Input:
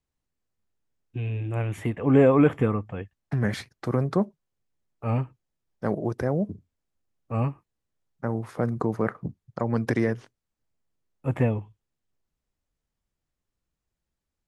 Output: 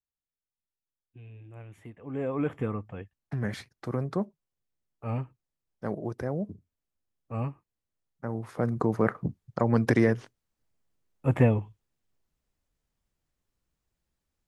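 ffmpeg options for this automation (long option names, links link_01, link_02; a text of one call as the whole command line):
ffmpeg -i in.wav -af "volume=2dB,afade=type=in:start_time=2.12:duration=0.69:silence=0.251189,afade=type=in:start_time=8.25:duration=0.93:silence=0.398107" out.wav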